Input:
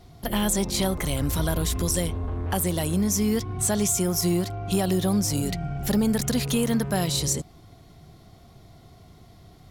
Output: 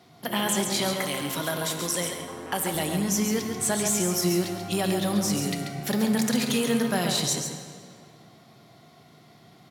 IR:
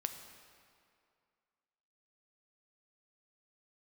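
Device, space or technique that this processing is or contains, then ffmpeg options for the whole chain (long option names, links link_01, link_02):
PA in a hall: -filter_complex "[0:a]highpass=frequency=140:width=0.5412,highpass=frequency=140:width=1.3066,equalizer=frequency=2000:width_type=o:width=2.4:gain=5.5,aecho=1:1:137:0.473[link_01];[1:a]atrim=start_sample=2205[link_02];[link_01][link_02]afir=irnorm=-1:irlink=0,asettb=1/sr,asplit=3[link_03][link_04][link_05];[link_03]atrim=end=0.934[link_06];[link_04]atrim=start=0.93:end=2.75,asetpts=PTS-STARTPTS,afade=type=in:duration=0.004:curve=qsin,afade=type=out:start_time=1.816:duration=0.004:curve=qsin,highpass=frequency=230:poles=1[link_07];[link_05]atrim=start=2.746[link_08];[link_06][link_07]acrossfade=duration=0.004:curve1=hsin:curve2=qsin[link_09];[link_09][link_08]acrossfade=duration=0.004:curve1=qsin:curve2=hsin,volume=-2dB"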